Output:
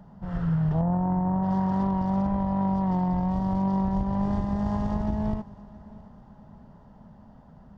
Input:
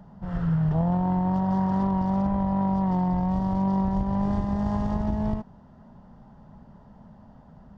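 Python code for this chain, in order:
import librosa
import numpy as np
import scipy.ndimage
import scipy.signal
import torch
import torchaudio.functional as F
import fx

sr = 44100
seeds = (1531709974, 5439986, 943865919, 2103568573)

y = fx.lowpass(x, sr, hz=1600.0, slope=12, at=(0.81, 1.43))
y = fx.echo_feedback(y, sr, ms=671, feedback_pct=41, wet_db=-21.0)
y = y * librosa.db_to_amplitude(-1.0)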